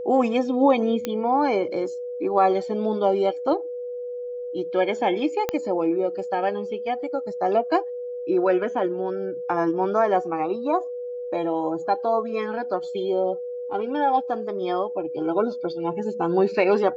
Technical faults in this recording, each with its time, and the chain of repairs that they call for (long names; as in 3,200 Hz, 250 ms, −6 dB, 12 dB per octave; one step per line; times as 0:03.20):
whistle 490 Hz −29 dBFS
0:01.05: click −12 dBFS
0:05.49: click −10 dBFS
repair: click removal
notch filter 490 Hz, Q 30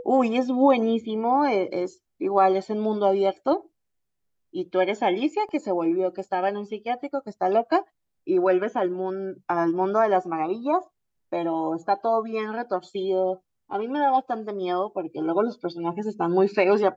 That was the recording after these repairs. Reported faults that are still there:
0:05.49: click